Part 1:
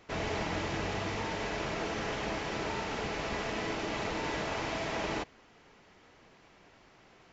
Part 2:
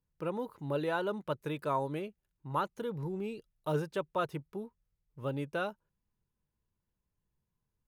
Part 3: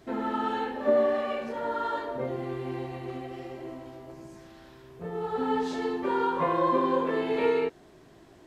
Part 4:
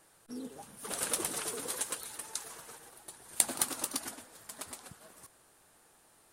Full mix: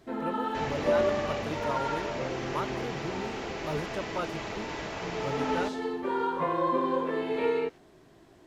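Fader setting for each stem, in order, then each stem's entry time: -2.0 dB, -1.5 dB, -2.5 dB, off; 0.45 s, 0.00 s, 0.00 s, off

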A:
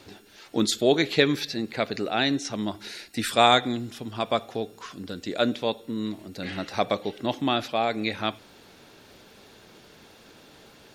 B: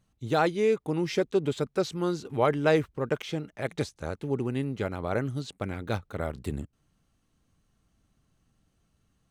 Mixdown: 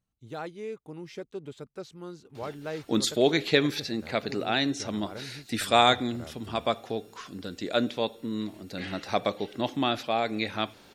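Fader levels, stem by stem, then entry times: -2.0, -13.0 dB; 2.35, 0.00 s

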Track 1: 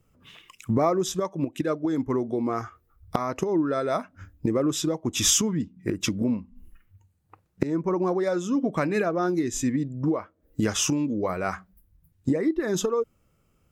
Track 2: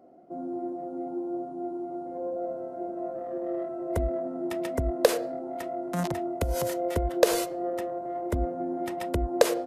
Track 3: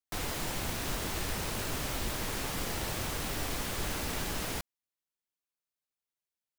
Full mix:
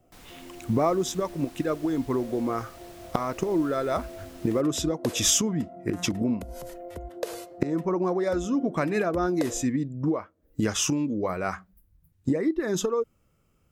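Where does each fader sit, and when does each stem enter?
-1.0, -11.5, -15.0 dB; 0.00, 0.00, 0.00 s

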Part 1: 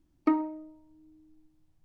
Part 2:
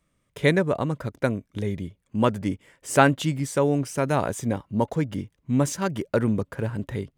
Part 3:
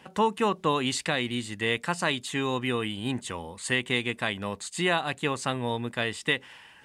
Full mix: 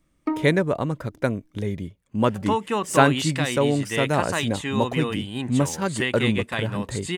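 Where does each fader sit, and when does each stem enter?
-0.5, +0.5, +0.5 dB; 0.00, 0.00, 2.30 s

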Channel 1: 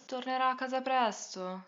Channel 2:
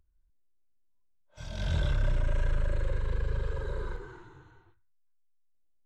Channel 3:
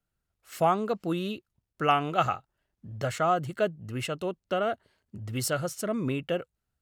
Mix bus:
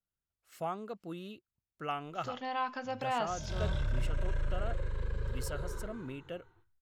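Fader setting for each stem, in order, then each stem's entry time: -4.5, -5.0, -13.0 dB; 2.15, 1.90, 0.00 s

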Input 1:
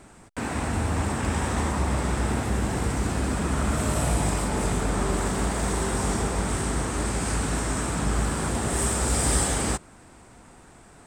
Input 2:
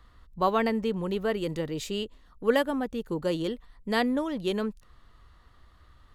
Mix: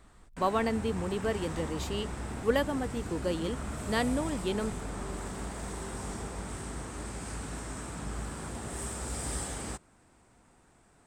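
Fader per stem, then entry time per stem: -12.5, -3.5 dB; 0.00, 0.00 s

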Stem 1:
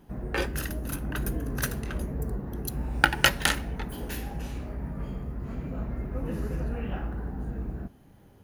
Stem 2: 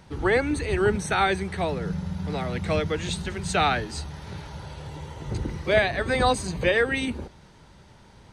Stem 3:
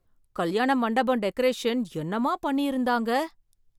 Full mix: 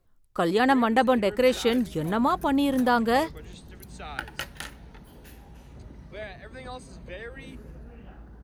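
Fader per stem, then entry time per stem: -13.5, -18.5, +2.5 dB; 1.15, 0.45, 0.00 s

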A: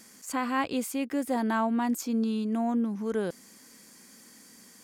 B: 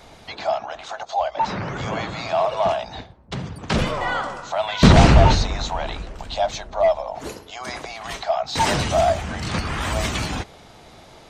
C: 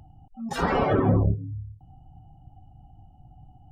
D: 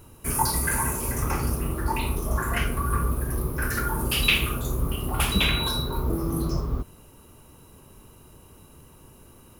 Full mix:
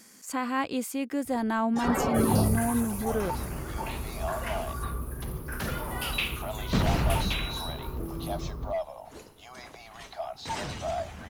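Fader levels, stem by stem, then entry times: -0.5, -14.0, -4.5, -9.0 dB; 0.00, 1.90, 1.25, 1.90 s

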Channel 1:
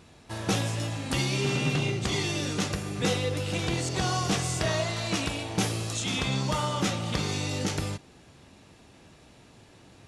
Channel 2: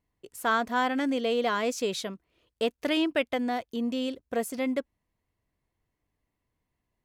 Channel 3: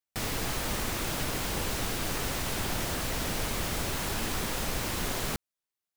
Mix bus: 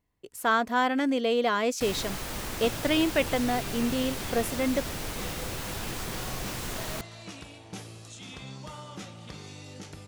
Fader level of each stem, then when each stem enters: -14.0, +1.5, -3.5 dB; 2.15, 0.00, 1.65 s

